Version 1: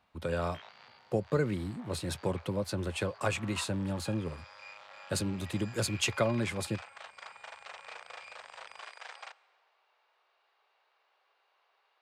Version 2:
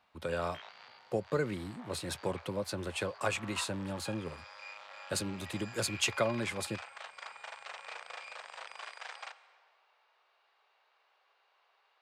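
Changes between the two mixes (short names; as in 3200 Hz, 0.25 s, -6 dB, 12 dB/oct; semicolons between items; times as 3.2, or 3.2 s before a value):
background: send +7.5 dB; master: add low shelf 260 Hz -8 dB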